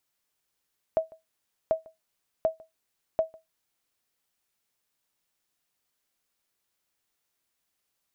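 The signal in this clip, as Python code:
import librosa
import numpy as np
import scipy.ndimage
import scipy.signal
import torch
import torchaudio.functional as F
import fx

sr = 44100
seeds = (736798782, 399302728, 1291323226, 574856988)

y = fx.sonar_ping(sr, hz=644.0, decay_s=0.17, every_s=0.74, pings=4, echo_s=0.15, echo_db=-24.5, level_db=-15.5)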